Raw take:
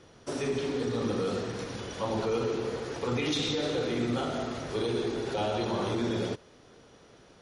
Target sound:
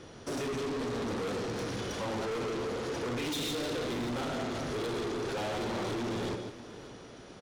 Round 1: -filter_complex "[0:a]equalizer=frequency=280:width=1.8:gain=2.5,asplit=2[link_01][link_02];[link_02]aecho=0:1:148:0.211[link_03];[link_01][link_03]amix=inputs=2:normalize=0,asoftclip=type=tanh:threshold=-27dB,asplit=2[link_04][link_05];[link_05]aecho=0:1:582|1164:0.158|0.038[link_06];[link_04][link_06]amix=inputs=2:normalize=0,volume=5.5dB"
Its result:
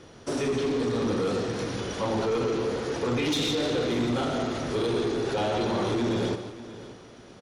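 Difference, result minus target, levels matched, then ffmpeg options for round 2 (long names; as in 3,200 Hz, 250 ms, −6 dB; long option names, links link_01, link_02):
soft clipping: distortion −8 dB
-filter_complex "[0:a]equalizer=frequency=280:width=1.8:gain=2.5,asplit=2[link_01][link_02];[link_02]aecho=0:1:148:0.211[link_03];[link_01][link_03]amix=inputs=2:normalize=0,asoftclip=type=tanh:threshold=-38dB,asplit=2[link_04][link_05];[link_05]aecho=0:1:582|1164:0.158|0.038[link_06];[link_04][link_06]amix=inputs=2:normalize=0,volume=5.5dB"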